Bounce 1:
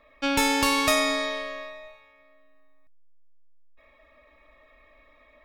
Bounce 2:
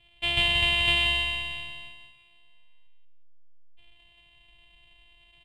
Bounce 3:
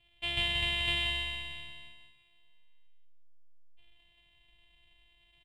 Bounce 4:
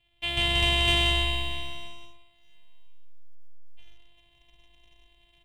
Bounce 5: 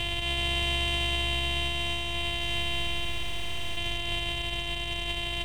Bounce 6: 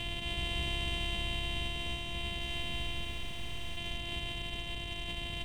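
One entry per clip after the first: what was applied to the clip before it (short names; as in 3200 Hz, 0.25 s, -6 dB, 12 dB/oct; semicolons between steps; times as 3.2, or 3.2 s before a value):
sample sorter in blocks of 128 samples; EQ curve 150 Hz 0 dB, 270 Hz -18 dB, 380 Hz -17 dB, 760 Hz -8 dB, 1400 Hz -17 dB, 2100 Hz +1 dB, 3100 Hz +13 dB, 5900 Hz -26 dB, 8500 Hz -10 dB, 14000 Hz -28 dB; feedback echo 0.181 s, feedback 27%, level -5 dB
doubler 43 ms -10 dB; gain -7 dB
AGC gain up to 6 dB; sample leveller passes 1; dark delay 61 ms, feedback 60%, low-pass 1900 Hz, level -7.5 dB
per-bin compression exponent 0.2; limiter -20.5 dBFS, peak gain reduction 9.5 dB
octaver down 1 oct, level +3 dB; gain -8 dB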